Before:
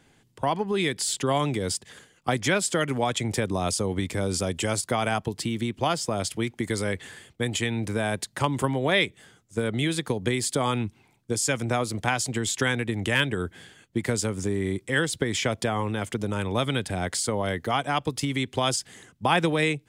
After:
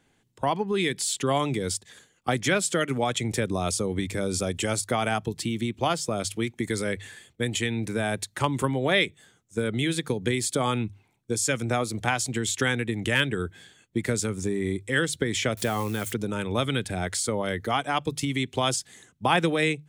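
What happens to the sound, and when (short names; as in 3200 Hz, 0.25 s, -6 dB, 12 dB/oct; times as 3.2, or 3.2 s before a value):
15.57–16.13 switching spikes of -30 dBFS
whole clip: notches 50/100/150 Hz; spectral noise reduction 6 dB; notch 4900 Hz, Q 16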